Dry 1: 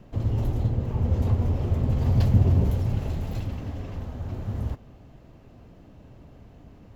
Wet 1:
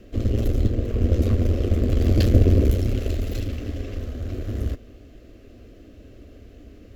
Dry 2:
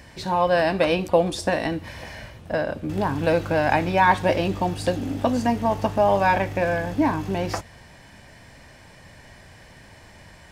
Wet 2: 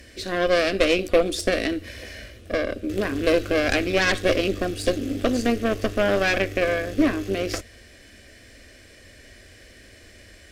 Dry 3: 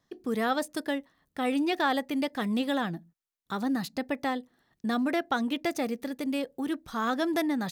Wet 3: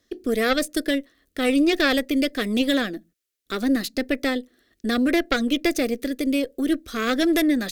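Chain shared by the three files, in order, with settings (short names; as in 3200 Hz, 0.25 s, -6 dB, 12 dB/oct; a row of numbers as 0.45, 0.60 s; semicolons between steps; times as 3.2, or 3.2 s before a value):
added harmonics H 6 -15 dB, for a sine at -5 dBFS; fixed phaser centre 370 Hz, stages 4; match loudness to -23 LUFS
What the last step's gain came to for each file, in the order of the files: +7.5, +2.5, +10.0 dB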